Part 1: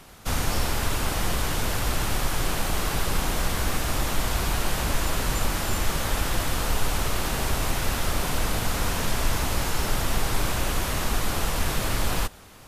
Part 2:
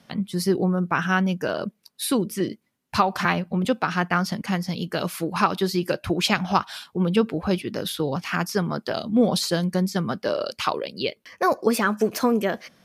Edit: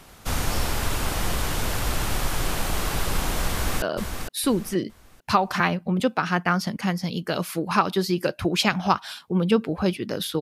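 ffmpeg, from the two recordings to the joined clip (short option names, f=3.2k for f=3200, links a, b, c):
-filter_complex "[0:a]apad=whole_dur=10.41,atrim=end=10.41,atrim=end=3.822[a];[1:a]atrim=start=1.468:end=8.06[b];[a][b]acrossfade=d=0.004:c1=hsin:c2=hsin,asplit=2[c][d];[d]afade=t=in:st=3.51:d=0.01,afade=t=out:st=3.82:d=0.01,aecho=0:1:460|920|1380|1840:0.473151|0.141945|0.0425836|0.0127751[e];[c][e]amix=inputs=2:normalize=0"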